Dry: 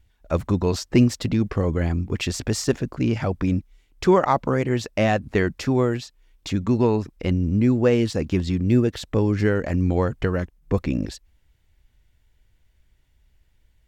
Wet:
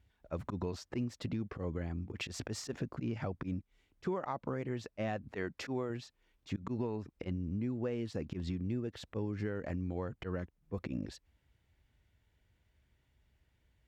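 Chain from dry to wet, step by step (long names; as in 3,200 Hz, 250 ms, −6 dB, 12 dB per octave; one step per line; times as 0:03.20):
volume swells 106 ms
0:05.31–0:05.90: low-shelf EQ 190 Hz −8.5 dB
downward compressor 6 to 1, threshold −30 dBFS, peak gain reduction 16.5 dB
high-pass filter 72 Hz
high-shelf EQ 4,500 Hz −9.5 dB
level −4 dB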